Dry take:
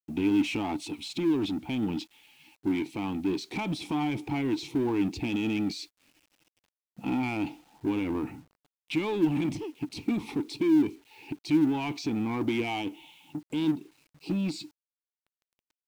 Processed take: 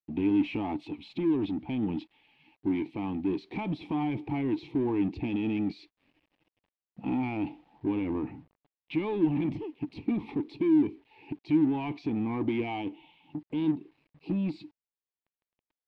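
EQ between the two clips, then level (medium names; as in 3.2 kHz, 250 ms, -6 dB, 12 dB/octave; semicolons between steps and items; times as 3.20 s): distance through air 400 m; peaking EQ 1.4 kHz -8.5 dB 0.26 oct; 0.0 dB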